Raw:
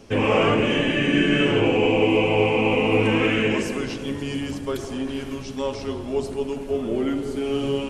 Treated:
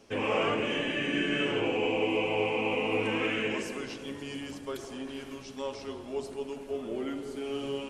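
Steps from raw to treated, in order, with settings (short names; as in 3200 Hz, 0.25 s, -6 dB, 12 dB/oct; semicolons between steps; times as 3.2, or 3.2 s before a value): low shelf 200 Hz -11 dB; gain -7.5 dB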